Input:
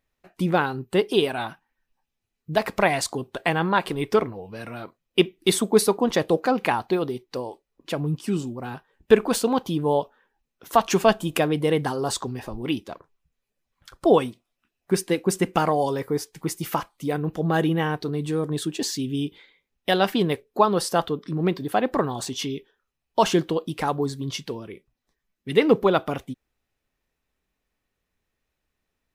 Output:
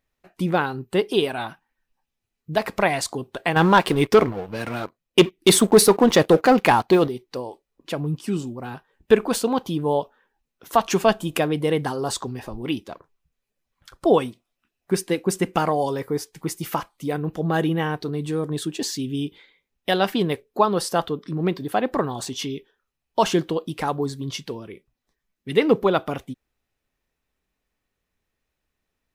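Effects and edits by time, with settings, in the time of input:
0:03.56–0:07.08: leveller curve on the samples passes 2

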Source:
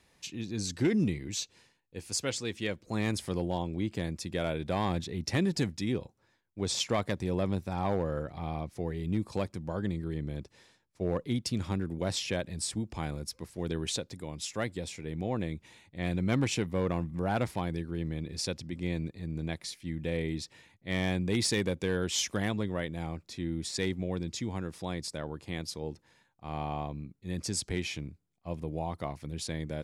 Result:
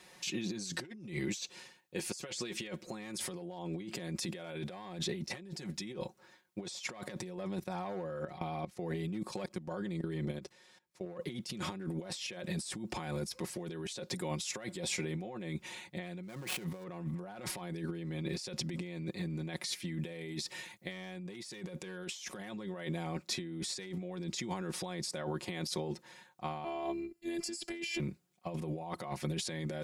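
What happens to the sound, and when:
0:07.36–0:11.06: output level in coarse steps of 18 dB
0:16.23–0:16.84: gap after every zero crossing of 0.086 ms
0:20.03–0:20.92: high-shelf EQ 5,900 Hz +7 dB
0:26.64–0:28.00: phases set to zero 340 Hz
whole clip: high-pass filter 290 Hz 6 dB per octave; comb filter 5.5 ms, depth 74%; compressor whose output falls as the input rises −42 dBFS, ratio −1; level +1.5 dB

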